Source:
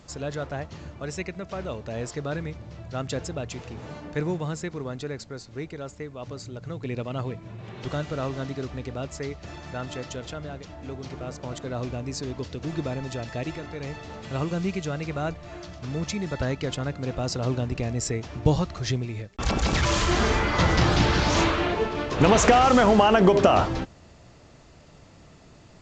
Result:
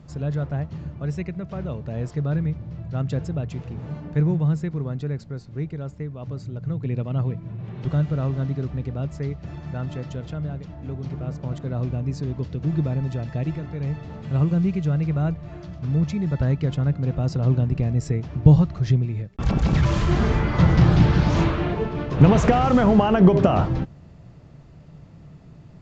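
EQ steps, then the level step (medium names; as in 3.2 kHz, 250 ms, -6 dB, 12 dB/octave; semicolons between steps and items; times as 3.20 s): low-pass 2.6 kHz 6 dB/octave; peaking EQ 150 Hz +9.5 dB 0.69 oct; bass shelf 290 Hz +7.5 dB; -3.5 dB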